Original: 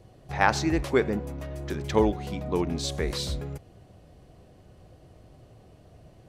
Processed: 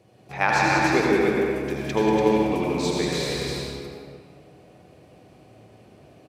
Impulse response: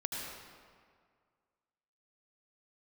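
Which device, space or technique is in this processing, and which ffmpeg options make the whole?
stadium PA: -filter_complex "[0:a]highpass=150,equalizer=f=2400:t=o:w=0.24:g=8,aecho=1:1:186.6|288.6:0.501|0.631[s0];[1:a]atrim=start_sample=2205[s1];[s0][s1]afir=irnorm=-1:irlink=0"

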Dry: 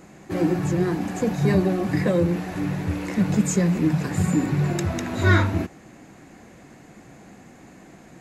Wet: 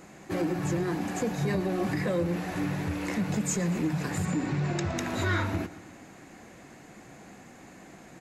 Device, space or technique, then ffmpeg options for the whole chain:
soft clipper into limiter: -filter_complex "[0:a]asettb=1/sr,asplit=3[s0][s1][s2];[s0]atrim=end=4.254[s3];[s1]atrim=start=4.25:end=4.98,asetpts=PTS-STARTPTS,afade=t=in:d=0.004:c=qsin,afade=t=out:st=0.726:d=0.004:c=qsin,lowpass=f=7100:w=0.5412,lowpass=f=7100:w=1.3066[s4];[s2]atrim=start=4.976[s5];[s3][s4]acrossfade=d=0.004:c1=hsin:c2=qsin[s6];[s6][s5]acrossfade=d=0.004:c1=qsin:c2=hsin,asoftclip=type=tanh:threshold=0.299,alimiter=limit=0.133:level=0:latency=1:release=184,lowshelf=f=410:g=-5,aecho=1:1:116|232|348|464|580:0.112|0.0662|0.0391|0.023|0.0136"

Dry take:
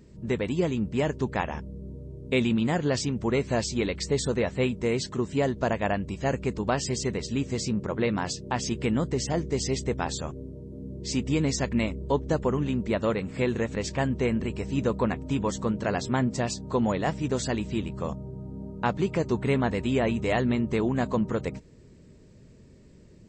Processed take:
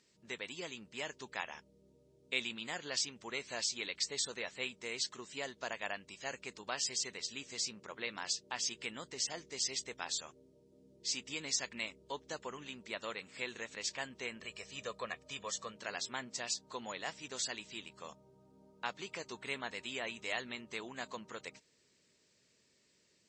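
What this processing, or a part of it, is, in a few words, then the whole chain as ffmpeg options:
piezo pickup straight into a mixer: -filter_complex "[0:a]lowpass=5300,aderivative,asettb=1/sr,asplit=3[s0][s1][s2];[s0]atrim=end=14.414[s3];[s1]atrim=start=14.41:end=15.75,asetpts=PTS-STARTPTS,afade=t=in:d=0.004:c=qsin,afade=t=out:st=1.336:d=0.004:c=qsin,aecho=1:1:1.7:0.55,atrim=end_sample=59094[s4];[s2]atrim=start=15.746[s5];[s3][s4]acrossfade=d=0.004:c1=hsin:c2=qsin[s6];[s6][s5]acrossfade=d=0.004:c1=qsin:c2=hsin,volume=1.68"

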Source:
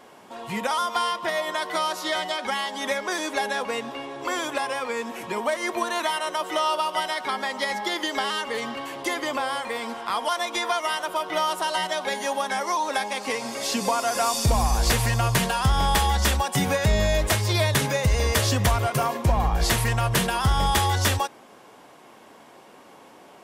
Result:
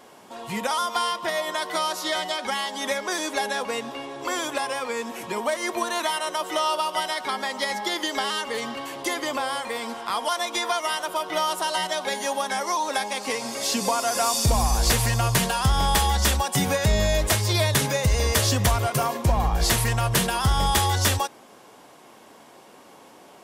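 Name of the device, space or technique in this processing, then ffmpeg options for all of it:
exciter from parts: -filter_complex "[0:a]asplit=2[s0][s1];[s1]highpass=3100,asoftclip=type=tanh:threshold=0.1,volume=0.562[s2];[s0][s2]amix=inputs=2:normalize=0"

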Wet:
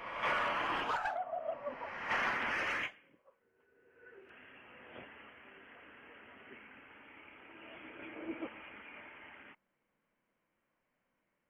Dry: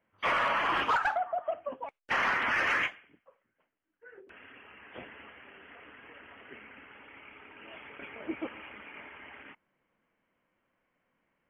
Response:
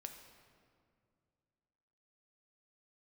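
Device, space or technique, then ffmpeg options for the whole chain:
reverse reverb: -filter_complex "[0:a]adynamicequalizer=threshold=0.00794:dfrequency=1400:dqfactor=0.93:tfrequency=1400:tqfactor=0.93:attack=5:release=100:ratio=0.375:range=2.5:mode=cutabove:tftype=bell,areverse[s0];[1:a]atrim=start_sample=2205[s1];[s0][s1]afir=irnorm=-1:irlink=0,areverse"

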